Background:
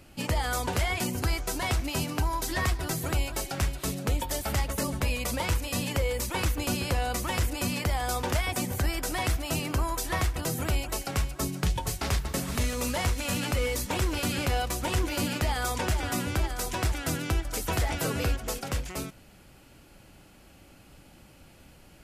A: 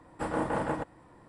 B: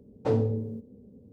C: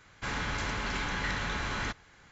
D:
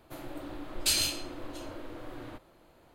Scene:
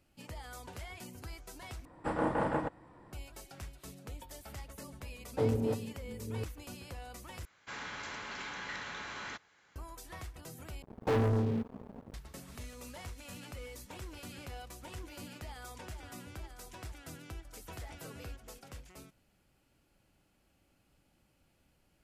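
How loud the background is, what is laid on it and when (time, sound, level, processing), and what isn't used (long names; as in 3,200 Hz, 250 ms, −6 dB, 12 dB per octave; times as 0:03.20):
background −18 dB
0:01.85: overwrite with A −1 dB + high-shelf EQ 7,000 Hz −11.5 dB
0:05.12: mix in B −5 dB + delay that plays each chunk backwards 440 ms, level −4 dB
0:07.45: overwrite with C −7.5 dB + high-pass filter 370 Hz 6 dB per octave
0:10.82: overwrite with B −12 dB + leveller curve on the samples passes 5
not used: D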